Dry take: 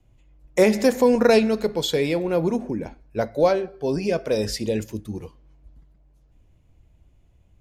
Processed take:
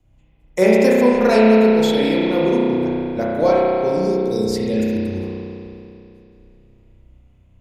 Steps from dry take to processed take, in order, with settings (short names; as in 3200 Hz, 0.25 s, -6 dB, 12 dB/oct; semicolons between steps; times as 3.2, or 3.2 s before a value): spectral gain 3.89–4.51, 480–3500 Hz -28 dB; spring tank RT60 2.8 s, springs 32 ms, chirp 70 ms, DRR -6 dB; gain -1.5 dB